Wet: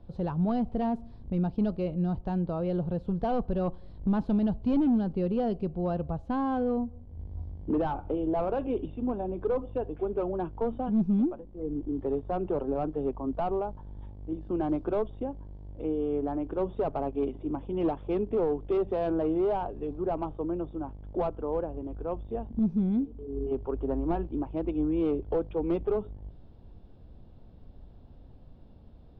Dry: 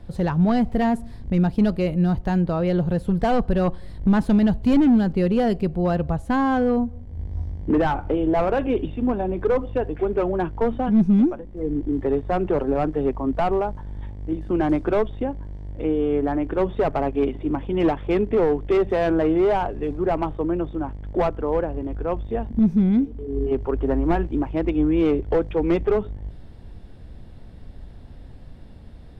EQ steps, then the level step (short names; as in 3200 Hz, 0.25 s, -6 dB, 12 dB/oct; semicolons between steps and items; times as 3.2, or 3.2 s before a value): air absorption 230 m; low shelf 240 Hz -4 dB; bell 1900 Hz -12.5 dB 0.74 oct; -6.0 dB